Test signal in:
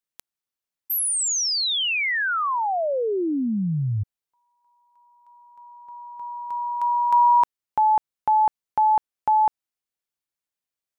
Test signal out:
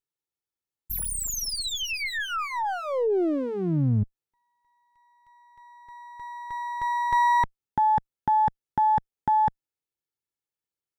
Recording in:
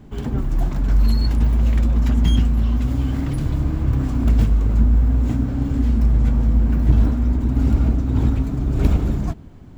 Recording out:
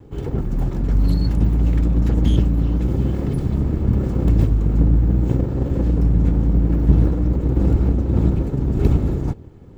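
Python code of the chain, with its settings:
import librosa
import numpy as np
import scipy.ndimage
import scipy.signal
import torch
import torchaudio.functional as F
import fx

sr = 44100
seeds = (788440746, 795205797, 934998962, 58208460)

y = fx.lower_of_two(x, sr, delay_ms=2.3)
y = fx.peak_eq(y, sr, hz=170.0, db=11.0, octaves=2.8)
y = y * 10.0 ** (-5.0 / 20.0)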